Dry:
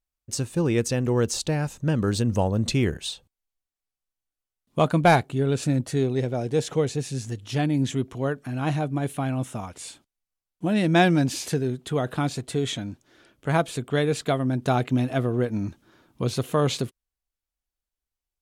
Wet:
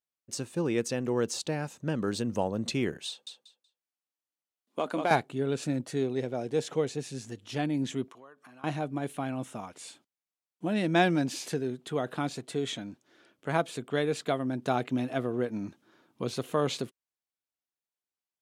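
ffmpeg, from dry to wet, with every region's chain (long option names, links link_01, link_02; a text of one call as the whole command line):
ffmpeg -i in.wav -filter_complex "[0:a]asettb=1/sr,asplit=3[link_01][link_02][link_03];[link_01]atrim=end=3.084[link_04];[link_02]atrim=start=3.08:end=5.11,asetpts=PTS-STARTPTS,afade=type=in:duration=0.004:curve=qsin,afade=type=out:start_time=2.026:duration=0.004:curve=qsin,highpass=frequency=220:width=0.5412,highpass=frequency=220:width=1.3066,acompressor=threshold=-21dB:ratio=2.5:attack=3.2:release=140:knee=1:detection=peak,aecho=1:1:187|374|561:0.562|0.118|0.0248,atrim=end_sample=89523[link_05];[link_03]atrim=start=5.106[link_06];[link_04][link_05]acrossfade=duration=0.004:curve1=hsin:curve2=qsin[link_07];[link_07][link_06]acrossfade=duration=0.004:curve1=qsin:curve2=hsin,asettb=1/sr,asplit=3[link_08][link_09][link_10];[link_08]atrim=end=8.084[link_11];[link_09]atrim=start=8.08:end=8.64,asetpts=PTS-STARTPTS,afade=type=in:duration=0.004:curve=qsin,afade=type=out:start_time=0.556:duration=0.004:curve=qsin,highpass=frequency=540:poles=1,equalizer=frequency=1100:width=3.6:gain=11,acompressor=threshold=-44dB:ratio=6:attack=3.2:release=140:knee=1:detection=peak[link_12];[link_10]atrim=start=8.636[link_13];[link_11][link_12]acrossfade=duration=0.004:curve1=hsin:curve2=qsin[link_14];[link_14][link_13]acrossfade=duration=0.004:curve1=qsin:curve2=hsin,highpass=190,highshelf=frequency=7700:gain=-5,volume=-4.5dB" out.wav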